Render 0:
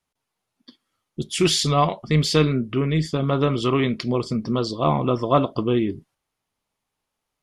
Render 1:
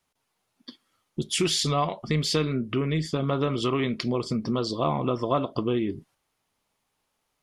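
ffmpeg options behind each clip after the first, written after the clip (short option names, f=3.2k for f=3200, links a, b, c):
-af "acompressor=threshold=-30dB:ratio=2.5,lowshelf=f=160:g=-3.5,volume=4.5dB"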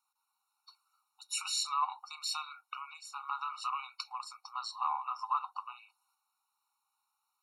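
-af "equalizer=f=630:t=o:w=0.67:g=-7,equalizer=f=2.5k:t=o:w=0.67:g=-10,equalizer=f=6.3k:t=o:w=0.67:g=-4,afftfilt=real='re*eq(mod(floor(b*sr/1024/740),2),1)':imag='im*eq(mod(floor(b*sr/1024/740),2),1)':win_size=1024:overlap=0.75"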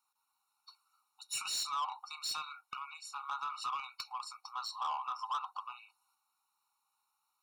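-af "asoftclip=type=tanh:threshold=-32dB,volume=1dB"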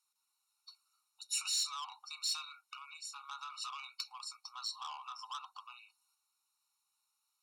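-af "bandpass=f=6.5k:t=q:w=0.63:csg=0,volume=3.5dB"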